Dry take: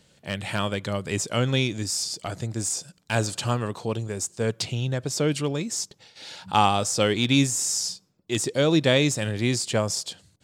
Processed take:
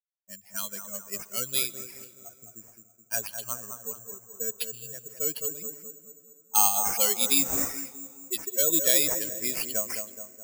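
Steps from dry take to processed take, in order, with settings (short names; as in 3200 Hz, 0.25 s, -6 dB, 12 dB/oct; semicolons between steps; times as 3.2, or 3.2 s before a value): per-bin expansion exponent 2; LPF 4900 Hz 12 dB/oct; low-pass opened by the level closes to 520 Hz, open at -25 dBFS; expander -50 dBFS; HPF 310 Hz 12 dB/oct; high shelf 3000 Hz +9.5 dB; in parallel at -5.5 dB: overloaded stage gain 20 dB; on the sum: analogue delay 0.211 s, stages 2048, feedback 49%, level -7 dB; plate-style reverb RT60 3.8 s, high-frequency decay 0.45×, pre-delay 0.115 s, DRR 20 dB; careless resampling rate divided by 6×, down none, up zero stuff; gain -10 dB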